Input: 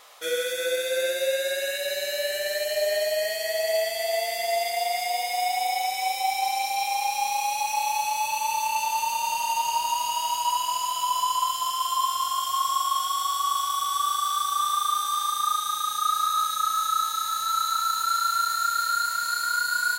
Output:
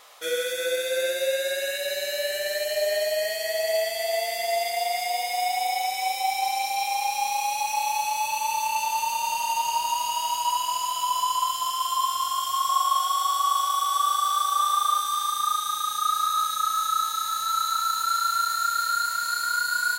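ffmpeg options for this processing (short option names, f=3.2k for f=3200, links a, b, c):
-filter_complex "[0:a]asettb=1/sr,asplit=3[a][b][c];[a]atrim=end=12.694[d];[b]atrim=start=12.69:end=15,asetpts=PTS-STARTPTS,afade=t=in:d=0.004:c=qsin,afade=t=out:st=2.306:d=0.004:c=qsin,highpass=f=580:t=q:w=4[e];[c]atrim=start=14.996[f];[d][e]acrossfade=d=0.004:c1=hsin:c2=qsin[g];[g][f]acrossfade=d=0.004:c1=qsin:c2=hsin"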